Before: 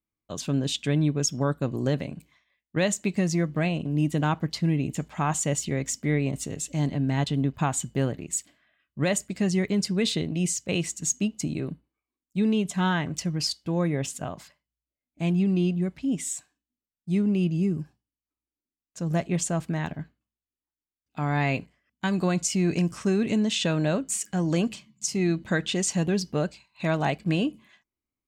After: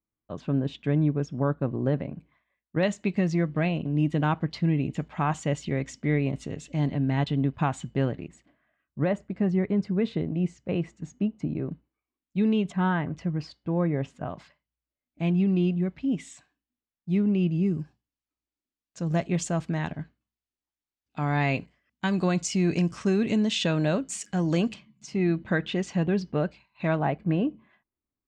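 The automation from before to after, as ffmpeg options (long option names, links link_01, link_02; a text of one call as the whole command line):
ffmpeg -i in.wav -af "asetnsamples=nb_out_samples=441:pad=0,asendcmd='2.83 lowpass f 3200;8.28 lowpass f 1400;11.72 lowpass f 3200;12.72 lowpass f 1700;14.29 lowpass f 3300;17.66 lowpass f 6000;24.74 lowpass f 2600;26.99 lowpass f 1500',lowpass=1600" out.wav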